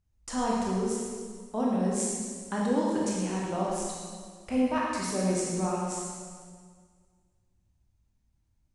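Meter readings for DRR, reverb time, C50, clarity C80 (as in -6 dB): -4.5 dB, 1.8 s, -2.0 dB, 0.5 dB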